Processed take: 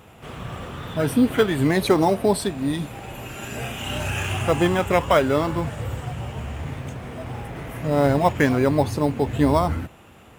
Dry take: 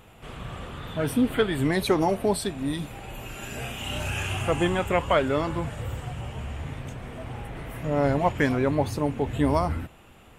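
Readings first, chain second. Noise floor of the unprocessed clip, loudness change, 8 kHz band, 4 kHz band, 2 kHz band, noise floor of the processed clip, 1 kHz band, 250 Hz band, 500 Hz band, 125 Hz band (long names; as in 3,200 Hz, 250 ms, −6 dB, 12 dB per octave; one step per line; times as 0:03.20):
−51 dBFS, +4.5 dB, +3.5 dB, +3.0 dB, +3.5 dB, −48 dBFS, +4.5 dB, +4.5 dB, +4.5 dB, +4.0 dB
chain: high-pass filter 65 Hz
in parallel at −11 dB: decimation without filtering 10×
on the sum: level +2.5 dB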